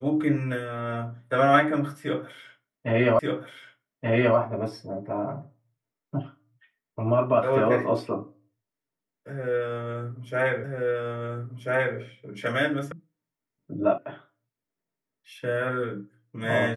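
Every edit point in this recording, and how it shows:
0:03.19: the same again, the last 1.18 s
0:10.64: the same again, the last 1.34 s
0:12.92: cut off before it has died away
0:13.98: cut off before it has died away

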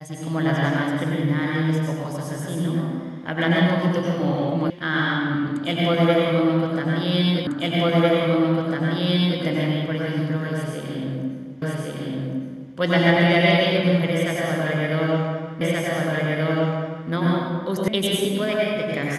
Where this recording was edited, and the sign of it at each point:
0:04.70: cut off before it has died away
0:07.47: the same again, the last 1.95 s
0:11.62: the same again, the last 1.11 s
0:15.61: the same again, the last 1.48 s
0:17.88: cut off before it has died away

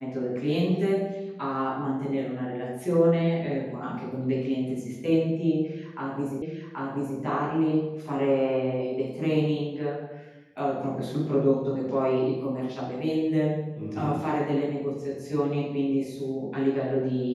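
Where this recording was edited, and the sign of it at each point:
0:06.42: the same again, the last 0.78 s

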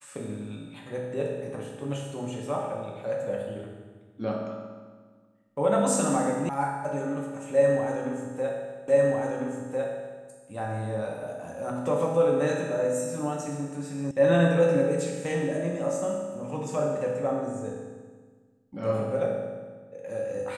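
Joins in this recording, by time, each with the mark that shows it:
0:06.49: cut off before it has died away
0:08.88: the same again, the last 1.35 s
0:14.11: cut off before it has died away

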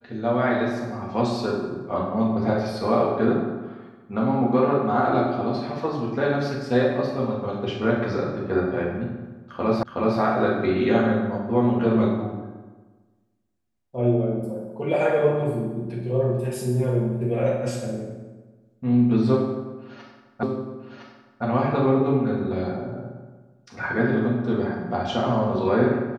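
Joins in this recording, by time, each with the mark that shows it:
0:09.83: the same again, the last 0.37 s
0:20.43: the same again, the last 1.01 s

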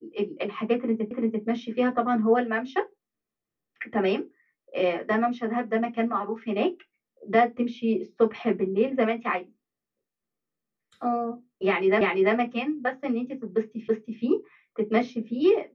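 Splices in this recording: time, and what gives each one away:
0:01.11: the same again, the last 0.34 s
0:12.01: the same again, the last 0.34 s
0:13.88: the same again, the last 0.33 s

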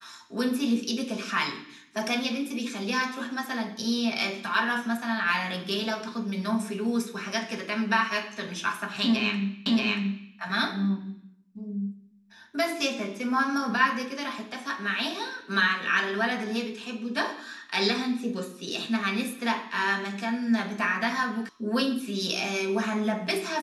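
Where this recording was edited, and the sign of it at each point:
0:09.66: the same again, the last 0.63 s
0:21.49: cut off before it has died away

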